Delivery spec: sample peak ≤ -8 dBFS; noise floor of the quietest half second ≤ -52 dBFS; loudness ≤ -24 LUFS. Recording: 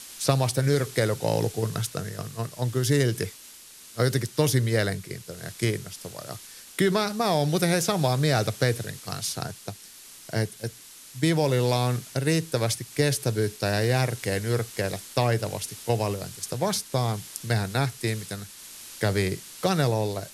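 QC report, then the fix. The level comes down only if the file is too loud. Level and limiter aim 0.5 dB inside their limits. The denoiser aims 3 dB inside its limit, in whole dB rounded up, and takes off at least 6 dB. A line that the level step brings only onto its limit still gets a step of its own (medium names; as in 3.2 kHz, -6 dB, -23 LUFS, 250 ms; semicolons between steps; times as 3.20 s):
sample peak -7.0 dBFS: fail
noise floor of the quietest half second -47 dBFS: fail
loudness -26.0 LUFS: pass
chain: noise reduction 8 dB, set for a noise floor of -47 dBFS; peak limiter -8.5 dBFS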